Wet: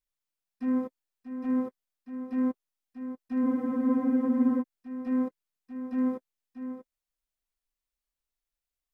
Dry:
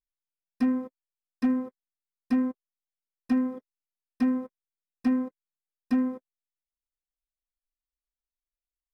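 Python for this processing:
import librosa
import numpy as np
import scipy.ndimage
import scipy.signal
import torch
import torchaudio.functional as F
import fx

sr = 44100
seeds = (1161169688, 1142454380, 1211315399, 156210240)

y = fx.auto_swell(x, sr, attack_ms=180.0)
y = y + 10.0 ** (-10.0 / 20.0) * np.pad(y, (int(638 * sr / 1000.0), 0))[:len(y)]
y = fx.spec_freeze(y, sr, seeds[0], at_s=3.47, hold_s=1.15)
y = y * librosa.db_to_amplitude(3.5)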